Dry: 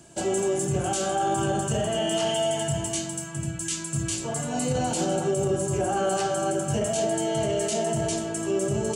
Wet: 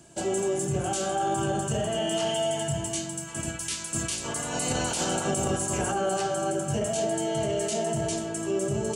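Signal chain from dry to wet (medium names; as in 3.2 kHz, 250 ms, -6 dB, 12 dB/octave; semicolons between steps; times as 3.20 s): 3.27–5.91 s: spectral peaks clipped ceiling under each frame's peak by 16 dB; trim -2 dB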